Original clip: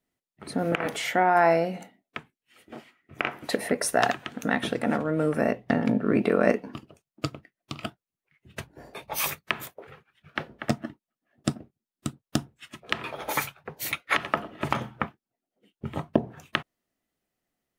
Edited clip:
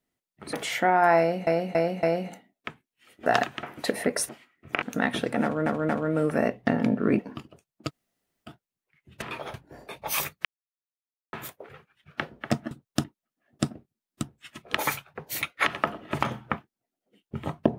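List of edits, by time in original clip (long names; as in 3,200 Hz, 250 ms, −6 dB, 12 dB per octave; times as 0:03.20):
0:00.53–0:00.86: remove
0:01.52–0:01.80: repeat, 4 plays
0:02.75–0:03.28: swap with 0:03.94–0:04.31
0:04.92: stutter 0.23 s, 3 plays
0:06.22–0:06.57: remove
0:07.26–0:07.87: fill with room tone, crossfade 0.06 s
0:09.51: splice in silence 0.88 s
0:12.08–0:12.41: move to 0:10.89
0:12.95–0:13.27: move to 0:08.60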